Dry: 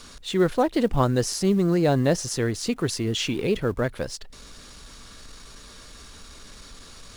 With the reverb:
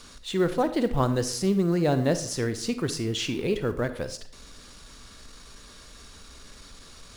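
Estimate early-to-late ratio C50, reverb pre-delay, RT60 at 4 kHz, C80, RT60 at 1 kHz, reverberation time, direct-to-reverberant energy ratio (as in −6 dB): 12.5 dB, 36 ms, 0.40 s, 15.5 dB, 0.55 s, 0.55 s, 10.5 dB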